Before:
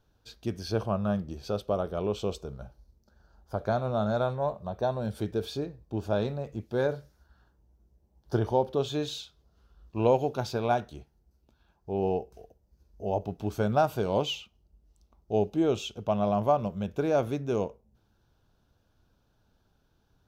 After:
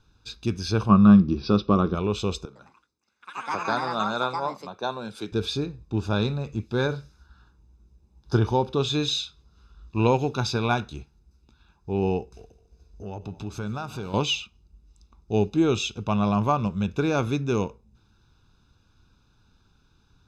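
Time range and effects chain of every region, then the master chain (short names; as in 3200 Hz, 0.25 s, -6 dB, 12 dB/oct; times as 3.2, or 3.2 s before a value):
0.89–1.95 brick-wall FIR low-pass 6000 Hz + small resonant body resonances 210/320/1100 Hz, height 10 dB, ringing for 30 ms
2.45–5.32 HPF 320 Hz + echoes that change speed 0.106 s, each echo +5 st, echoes 3, each echo -6 dB + three-band expander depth 40%
12.31–14.14 compressor 2:1, threshold -41 dBFS + multi-head echo 71 ms, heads second and third, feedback 58%, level -19.5 dB
whole clip: LPF 5600 Hz 12 dB/oct; high shelf 2900 Hz +9.5 dB; comb 0.8 ms, depth 65%; gain +3.5 dB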